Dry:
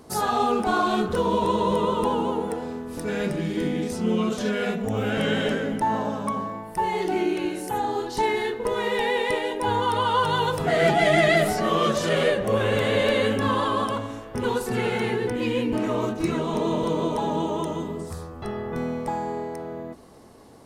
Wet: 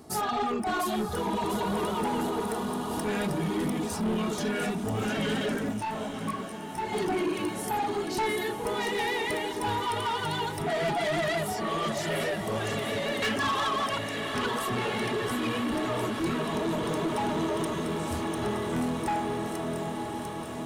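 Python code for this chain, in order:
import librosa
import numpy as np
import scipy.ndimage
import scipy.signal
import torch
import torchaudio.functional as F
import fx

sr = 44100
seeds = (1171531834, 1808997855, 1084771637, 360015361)

p1 = fx.peak_eq(x, sr, hz=2100.0, db=12.5, octaves=2.8, at=(13.22, 14.46))
p2 = p1 + fx.echo_wet_highpass(p1, sr, ms=698, feedback_pct=55, hz=5000.0, wet_db=-3.5, dry=0)
p3 = fx.dereverb_blind(p2, sr, rt60_s=0.98)
p4 = fx.high_shelf(p3, sr, hz=8300.0, db=4.0)
p5 = fx.notch_comb(p4, sr, f0_hz=510.0)
p6 = fx.echo_diffused(p5, sr, ms=957, feedback_pct=68, wet_db=-10.0)
p7 = fx.rider(p6, sr, range_db=5, speed_s=2.0)
p8 = 10.0 ** (-24.0 / 20.0) * np.tanh(p7 / 10.0 ** (-24.0 / 20.0))
y = fx.detune_double(p8, sr, cents=fx.line((5.71, 39.0), (6.92, 22.0)), at=(5.71, 6.92), fade=0.02)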